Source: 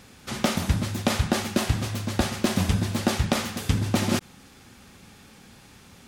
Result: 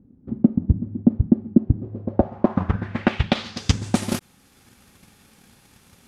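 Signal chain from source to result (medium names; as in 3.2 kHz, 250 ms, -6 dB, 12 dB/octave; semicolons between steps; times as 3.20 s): transient shaper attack +10 dB, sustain -2 dB; low-pass sweep 270 Hz -> 12 kHz, 1.66–4.15 s; trim -5 dB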